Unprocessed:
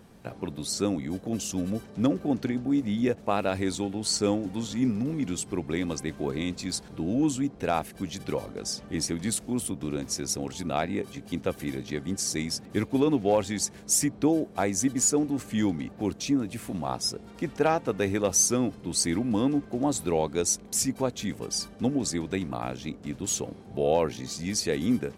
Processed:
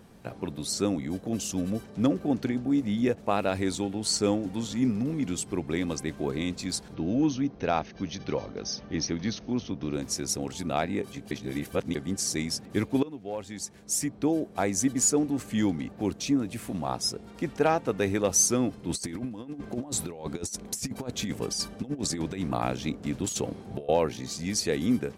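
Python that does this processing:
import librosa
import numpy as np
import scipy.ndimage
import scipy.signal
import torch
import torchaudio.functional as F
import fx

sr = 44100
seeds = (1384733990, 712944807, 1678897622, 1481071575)

y = fx.brickwall_lowpass(x, sr, high_hz=6500.0, at=(6.94, 9.94))
y = fx.over_compress(y, sr, threshold_db=-31.0, ratio=-0.5, at=(18.89, 23.89))
y = fx.edit(y, sr, fx.reverse_span(start_s=11.31, length_s=0.64),
    fx.fade_in_from(start_s=13.03, length_s=1.73, floor_db=-19.5), tone=tone)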